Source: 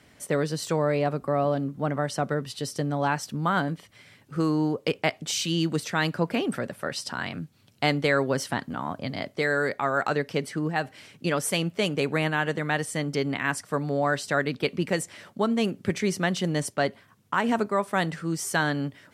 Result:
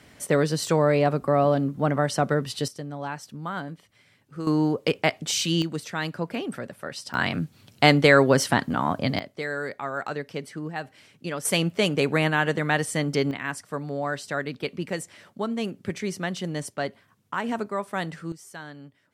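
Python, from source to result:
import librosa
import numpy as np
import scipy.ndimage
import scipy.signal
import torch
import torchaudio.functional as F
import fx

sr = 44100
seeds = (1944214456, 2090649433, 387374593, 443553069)

y = fx.gain(x, sr, db=fx.steps((0.0, 4.0), (2.68, -7.5), (4.47, 2.5), (5.62, -4.0), (7.14, 7.0), (9.19, -5.5), (11.45, 3.0), (13.31, -4.0), (18.32, -15.5)))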